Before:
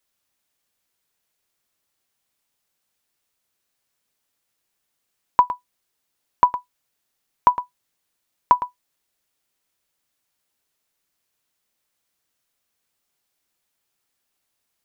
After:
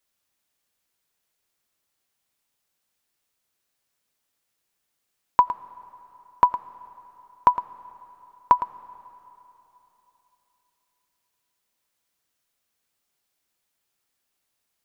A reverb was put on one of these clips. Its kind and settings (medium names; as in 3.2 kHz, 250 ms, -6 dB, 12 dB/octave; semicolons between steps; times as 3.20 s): algorithmic reverb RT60 3.4 s, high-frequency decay 0.9×, pre-delay 45 ms, DRR 19 dB; trim -1.5 dB